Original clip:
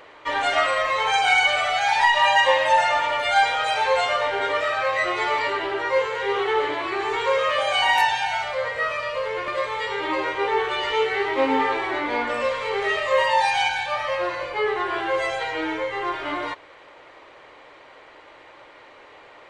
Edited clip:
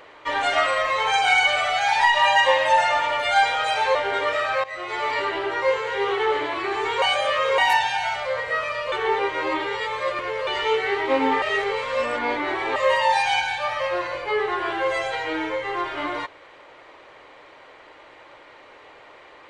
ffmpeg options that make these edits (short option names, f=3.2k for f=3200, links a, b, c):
-filter_complex "[0:a]asplit=9[a][b][c][d][e][f][g][h][i];[a]atrim=end=3.952[j];[b]atrim=start=4.228:end=4.92,asetpts=PTS-STARTPTS,afade=t=out:st=0.688:d=0.004:c=hsin:silence=0.149624[k];[c]atrim=start=4.92:end=7.302,asetpts=PTS-STARTPTS,afade=t=in:d=0.57:silence=0.149624[l];[d]atrim=start=7.298:end=7.862,asetpts=PTS-STARTPTS,areverse[m];[e]atrim=start=7.858:end=9.202[n];[f]atrim=start=9.198:end=10.752,asetpts=PTS-STARTPTS,areverse[o];[g]atrim=start=10.748:end=11.702[p];[h]atrim=start=11.698:end=13.042,asetpts=PTS-STARTPTS,areverse[q];[i]atrim=start=13.038[r];[k][l]concat=n=2:v=0:a=1[s];[j][s]acrossfade=d=0.004:c1=hsin:c2=hsin[t];[t][m]acrossfade=d=0.004:c1=hsin:c2=hsin[u];[u][n]acrossfade=d=0.004:c1=hsin:c2=hsin[v];[v][o]acrossfade=d=0.004:c1=hsin:c2=hsin[w];[w][p]acrossfade=d=0.004:c1=hsin:c2=hsin[x];[x][q]acrossfade=d=0.004:c1=hsin:c2=hsin[y];[y][r]acrossfade=d=0.004:c1=hsin:c2=hsin"